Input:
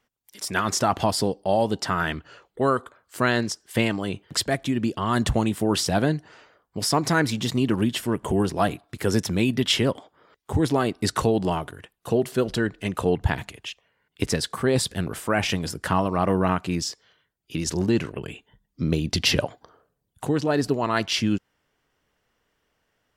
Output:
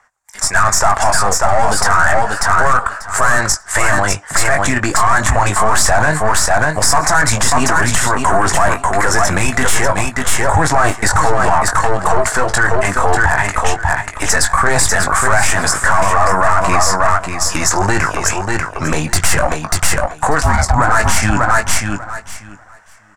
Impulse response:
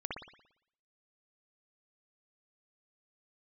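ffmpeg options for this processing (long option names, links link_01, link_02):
-filter_complex "[0:a]aphaser=in_gain=1:out_gain=1:delay=4.8:decay=0.35:speed=1.5:type=triangular,acrossover=split=520 5900:gain=0.0631 1 0.126[link_01][link_02][link_03];[link_01][link_02][link_03]amix=inputs=3:normalize=0,asplit=2[link_04][link_05];[link_05]adelay=20,volume=-8dB[link_06];[link_04][link_06]amix=inputs=2:normalize=0,asettb=1/sr,asplit=3[link_07][link_08][link_09];[link_07]atrim=end=20.424[link_10];[link_08]atrim=start=20.42:end=20.92,asetpts=PTS-STARTPTS,afade=type=in:duration=0.004:curve=qsin,afade=type=out:start_time=0.496:duration=0.004:curve=qsin,aeval=exprs='val(0)*sin(2*PI*360*n/s)':channel_layout=same[link_11];[link_09]atrim=start=20.916[link_12];[link_10][link_11]acrossfade=duration=0.004:curve1=hsin:curve2=qsin[link_13];[link_13][link_12]acrossfade=duration=0.004:curve1=qsin:curve2=hsin,aeval=exprs='(tanh(20*val(0)+0.5)-tanh(0.5))/20':channel_layout=same,asplit=2[link_14][link_15];[link_15]aecho=0:1:591|1182|1773:0.447|0.0715|0.0114[link_16];[link_14][link_16]amix=inputs=2:normalize=0,dynaudnorm=framelen=210:gausssize=17:maxgain=5dB,firequalizer=gain_entry='entry(100,0);entry(210,-10);entry(430,-19);entry(690,-8);entry(1700,-7);entry(3000,-27);entry(4700,-19);entry(7500,0);entry(15000,-16)':delay=0.05:min_phase=1,alimiter=level_in=32.5dB:limit=-1dB:release=50:level=0:latency=1,volume=-1dB"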